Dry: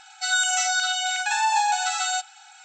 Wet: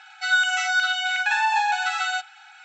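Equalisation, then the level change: band-pass filter 1.8 kHz, Q 1.1; distance through air 56 m; +6.0 dB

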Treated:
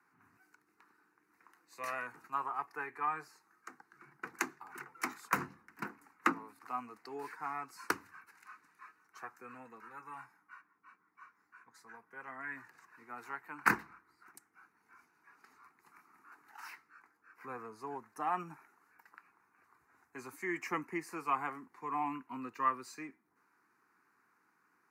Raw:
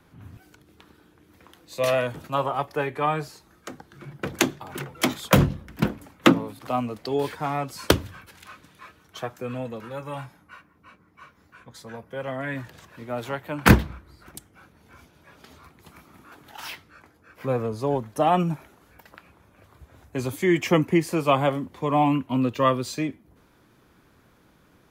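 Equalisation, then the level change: high-pass 500 Hz 12 dB/octave; low-pass 4 kHz 6 dB/octave; static phaser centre 1.4 kHz, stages 4; -6.5 dB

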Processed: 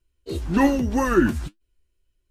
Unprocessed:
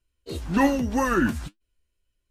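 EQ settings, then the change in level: bass shelf 120 Hz +6 dB; peaking EQ 360 Hz +7 dB 0.42 oct; 0.0 dB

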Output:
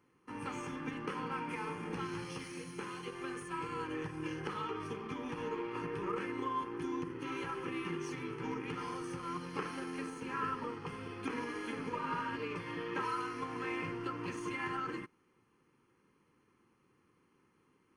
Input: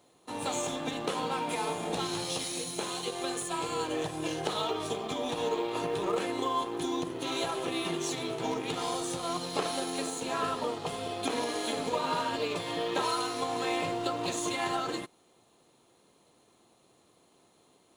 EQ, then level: Savitzky-Golay filter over 15 samples; static phaser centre 1.6 kHz, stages 4; -2.0 dB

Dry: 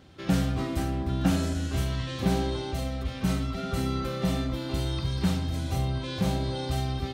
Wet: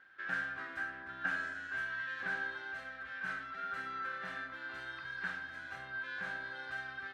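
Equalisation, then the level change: band-pass filter 1.6 kHz, Q 15; +13.0 dB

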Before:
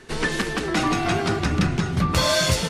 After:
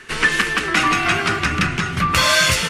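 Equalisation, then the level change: high-order bell 1.8 kHz +9.5 dB; treble shelf 3 kHz +8 dB; -1.5 dB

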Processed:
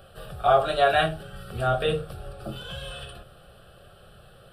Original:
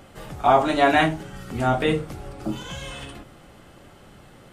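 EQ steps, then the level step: peaking EQ 9 kHz +5 dB 0.46 oct; static phaser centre 1.4 kHz, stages 8; 0.0 dB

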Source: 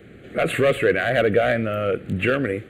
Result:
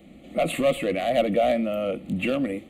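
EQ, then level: static phaser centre 420 Hz, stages 6; +1.0 dB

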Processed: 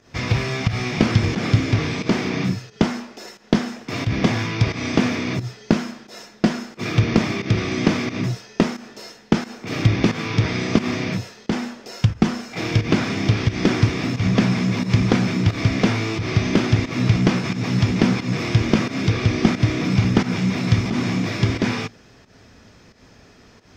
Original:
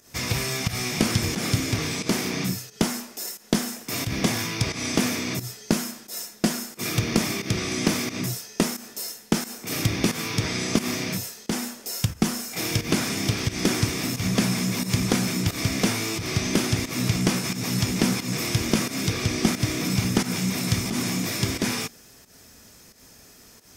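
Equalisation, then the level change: distance through air 200 m; peaking EQ 110 Hz +5 dB 0.25 oct; +5.5 dB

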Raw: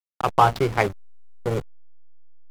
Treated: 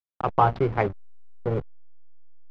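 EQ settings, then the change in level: tape spacing loss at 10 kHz 35 dB; 0.0 dB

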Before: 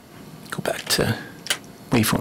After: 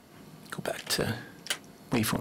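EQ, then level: hum notches 60/120 Hz; -8.5 dB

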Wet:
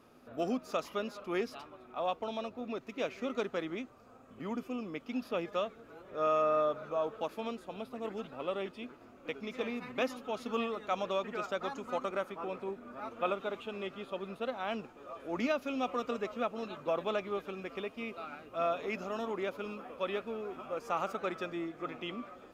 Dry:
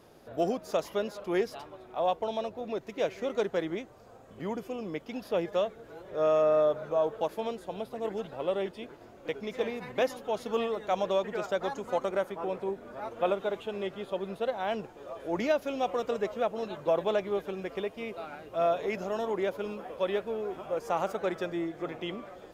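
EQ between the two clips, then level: graphic EQ with 31 bands 250 Hz +11 dB, 1.25 kHz +11 dB, 2.5 kHz +7 dB; dynamic bell 4.3 kHz, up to +4 dB, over -50 dBFS, Q 0.9; -7.0 dB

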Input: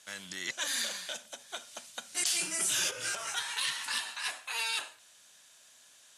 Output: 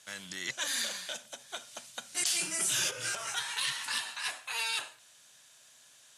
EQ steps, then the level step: peaking EQ 130 Hz +8.5 dB 0.38 oct; 0.0 dB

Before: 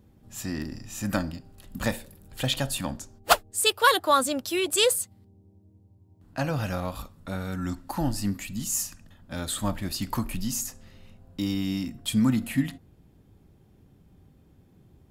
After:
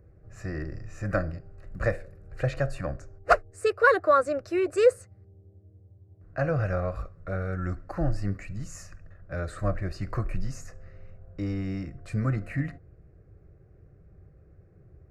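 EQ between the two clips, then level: tape spacing loss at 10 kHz 30 dB; static phaser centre 900 Hz, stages 6; +6.5 dB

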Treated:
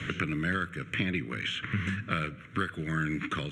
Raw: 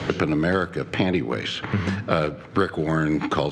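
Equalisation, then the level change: bass shelf 170 Hz -7 dB; peaking EQ 480 Hz -12.5 dB 1.8 oct; static phaser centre 2 kHz, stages 4; 0.0 dB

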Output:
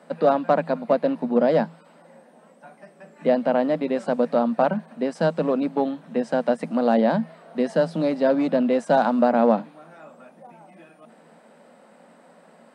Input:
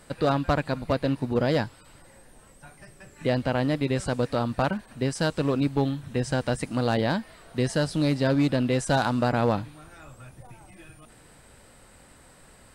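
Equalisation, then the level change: rippled Chebyshev high-pass 160 Hz, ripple 9 dB; low-pass 1.9 kHz 6 dB/octave; +9.0 dB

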